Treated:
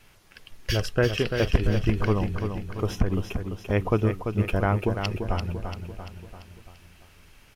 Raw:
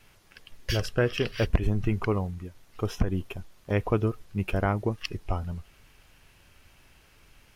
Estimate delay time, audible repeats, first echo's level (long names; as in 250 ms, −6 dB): 341 ms, 5, −7.0 dB